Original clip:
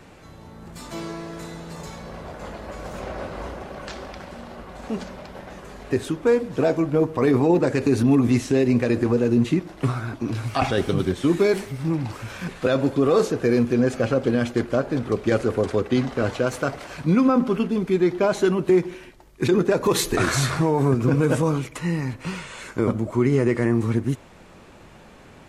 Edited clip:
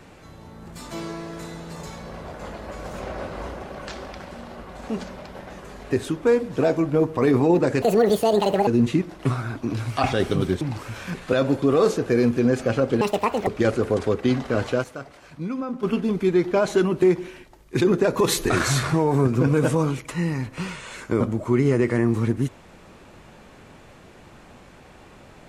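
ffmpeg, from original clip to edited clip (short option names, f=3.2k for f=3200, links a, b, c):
-filter_complex "[0:a]asplit=8[a][b][c][d][e][f][g][h];[a]atrim=end=7.824[i];[b]atrim=start=7.82:end=9.25,asetpts=PTS-STARTPTS,asetrate=74088,aresample=44100[j];[c]atrim=start=9.246:end=11.192[k];[d]atrim=start=11.948:end=14.354[l];[e]atrim=start=14.35:end=15.14,asetpts=PTS-STARTPTS,asetrate=75852,aresample=44100,atrim=end_sample=20255,asetpts=PTS-STARTPTS[m];[f]atrim=start=15.136:end=16.51,asetpts=PTS-STARTPTS,afade=t=out:st=1.204:d=0.17:c=log:silence=0.281838[n];[g]atrim=start=16.51:end=17.5,asetpts=PTS-STARTPTS,volume=-11dB[o];[h]atrim=start=17.5,asetpts=PTS-STARTPTS,afade=t=in:d=0.17:c=log:silence=0.281838[p];[i][j]acrossfade=d=0.004:c1=hsin:c2=hsin[q];[q][k]acrossfade=d=0.004:c1=hsin:c2=hsin[r];[r][l]acrossfade=d=0.004:c1=hsin:c2=hsin[s];[s][m]acrossfade=d=0.004:c1=hsin:c2=hsin[t];[n][o][p]concat=n=3:v=0:a=1[u];[t][u]acrossfade=d=0.004:c1=hsin:c2=hsin"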